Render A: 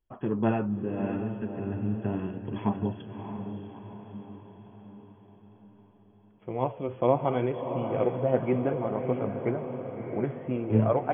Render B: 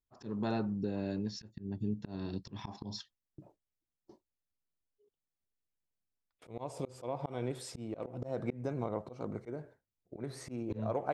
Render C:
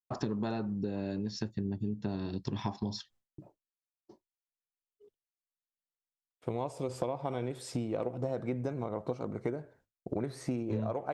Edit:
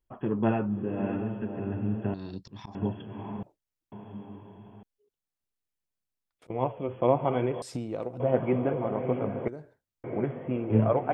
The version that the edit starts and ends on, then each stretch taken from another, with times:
A
0:02.14–0:02.75: punch in from B
0:03.43–0:03.92: punch in from B
0:04.83–0:06.50: punch in from B
0:07.62–0:08.20: punch in from C
0:09.48–0:10.04: punch in from B

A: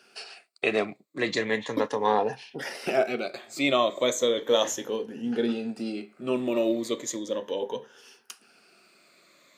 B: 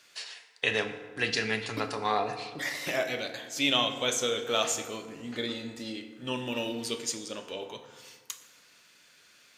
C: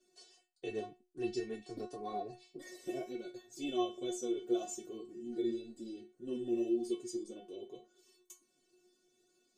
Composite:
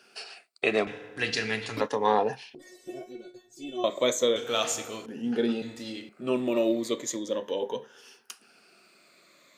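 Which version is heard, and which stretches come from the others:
A
0:00.87–0:01.81: punch in from B
0:02.55–0:03.84: punch in from C
0:04.36–0:05.06: punch in from B
0:05.62–0:06.09: punch in from B

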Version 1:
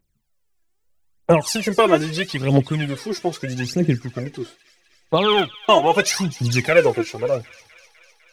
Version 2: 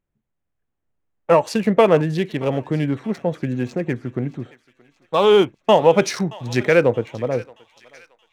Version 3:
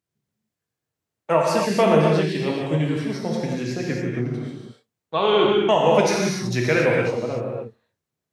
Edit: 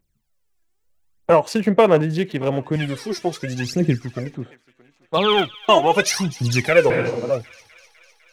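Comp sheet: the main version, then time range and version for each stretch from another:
1
0:01.30–0:02.76: punch in from 2
0:04.34–0:05.17: punch in from 2
0:06.90–0:07.30: punch in from 3

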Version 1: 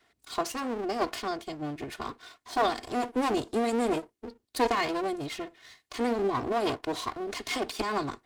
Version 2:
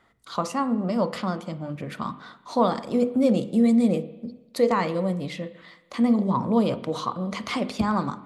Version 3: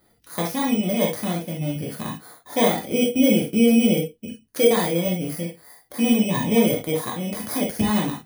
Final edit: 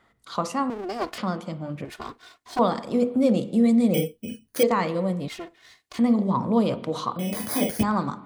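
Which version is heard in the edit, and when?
2
0:00.70–0:01.18: punch in from 1
0:01.85–0:02.59: punch in from 1
0:03.94–0:04.63: punch in from 3
0:05.28–0:05.99: punch in from 1
0:07.19–0:07.83: punch in from 3

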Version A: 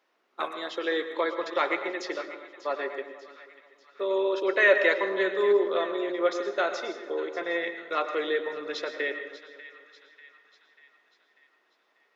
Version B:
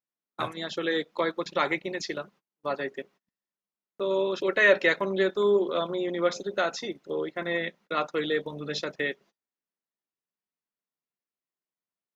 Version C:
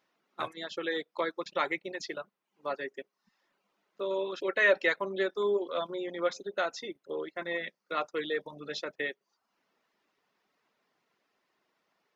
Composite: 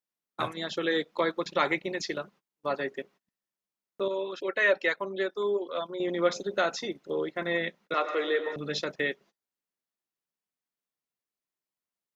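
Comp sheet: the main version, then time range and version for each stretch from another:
B
0:04.08–0:06.00: punch in from C
0:07.94–0:08.56: punch in from A

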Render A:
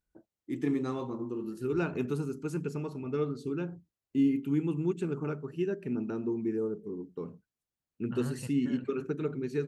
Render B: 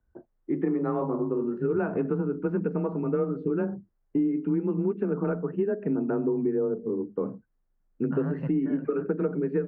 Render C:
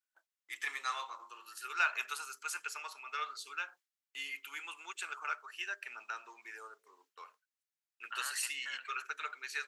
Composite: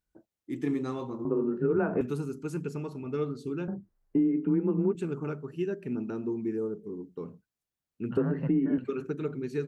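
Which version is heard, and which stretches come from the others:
A
0:01.25–0:02.01: punch in from B
0:03.68–0:04.95: punch in from B
0:08.17–0:08.78: punch in from B
not used: C

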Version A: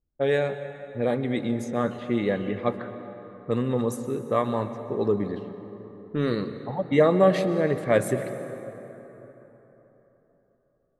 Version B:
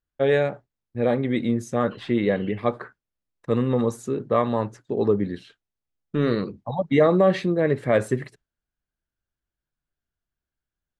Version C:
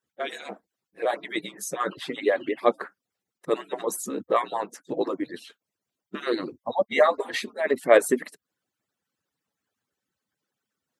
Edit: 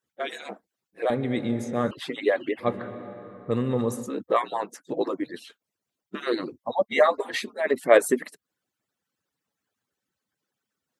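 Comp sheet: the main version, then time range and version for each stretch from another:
C
0:01.10–0:01.91: punch in from A
0:02.63–0:04.05: punch in from A, crossfade 0.10 s
not used: B

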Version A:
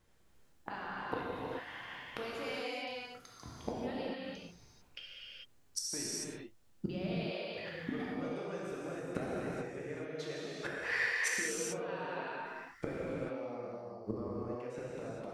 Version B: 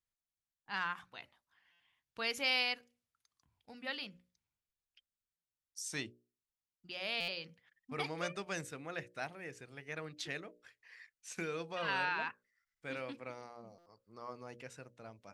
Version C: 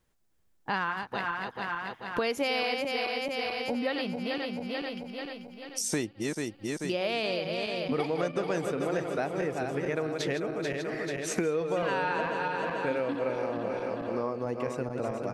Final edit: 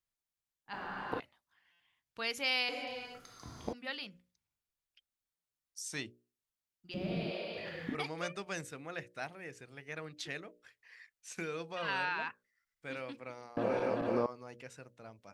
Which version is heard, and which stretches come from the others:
B
0:00.73–0:01.20: punch in from A
0:02.69–0:03.73: punch in from A
0:06.94–0:07.95: punch in from A
0:13.57–0:14.26: punch in from C

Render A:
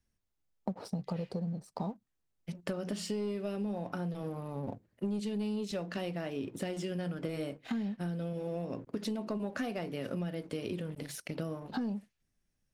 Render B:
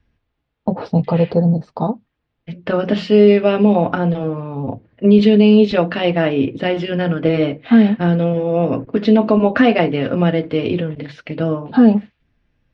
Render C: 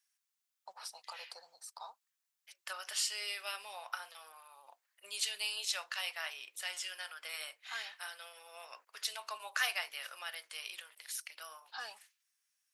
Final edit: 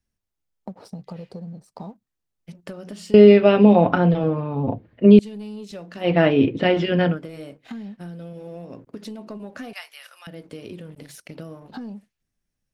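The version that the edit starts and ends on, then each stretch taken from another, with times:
A
0:03.14–0:05.19: punch in from B
0:06.06–0:07.13: punch in from B, crossfade 0.16 s
0:09.73–0:10.27: punch in from C

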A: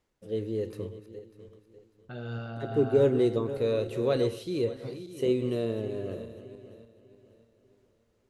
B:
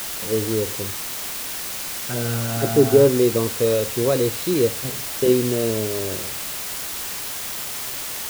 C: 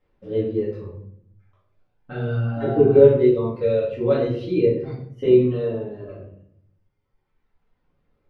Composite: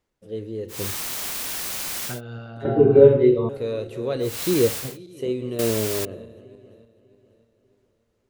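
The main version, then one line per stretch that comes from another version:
A
0:00.76–0:02.13: punch in from B, crossfade 0.16 s
0:02.65–0:03.49: punch in from C
0:04.32–0:04.86: punch in from B, crossfade 0.24 s
0:05.59–0:06.05: punch in from B

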